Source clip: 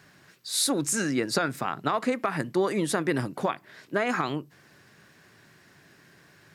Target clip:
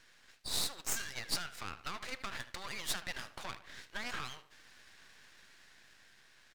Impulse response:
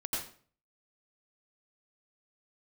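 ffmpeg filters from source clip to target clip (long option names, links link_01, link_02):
-filter_complex "[0:a]lowpass=3500,asoftclip=type=tanh:threshold=-17.5dB,highpass=700,acompressor=threshold=-34dB:ratio=6,aderivative,dynaudnorm=framelen=380:gausssize=7:maxgain=4dB,asplit=2[link_01][link_02];[link_02]adelay=77,lowpass=frequency=1700:poles=1,volume=-11dB,asplit=2[link_03][link_04];[link_04]adelay=77,lowpass=frequency=1700:poles=1,volume=0.49,asplit=2[link_05][link_06];[link_06]adelay=77,lowpass=frequency=1700:poles=1,volume=0.49,asplit=2[link_07][link_08];[link_08]adelay=77,lowpass=frequency=1700:poles=1,volume=0.49,asplit=2[link_09][link_10];[link_10]adelay=77,lowpass=frequency=1700:poles=1,volume=0.49[link_11];[link_03][link_05][link_07][link_09][link_11]amix=inputs=5:normalize=0[link_12];[link_01][link_12]amix=inputs=2:normalize=0,aeval=exprs='max(val(0),0)':channel_layout=same,volume=11dB"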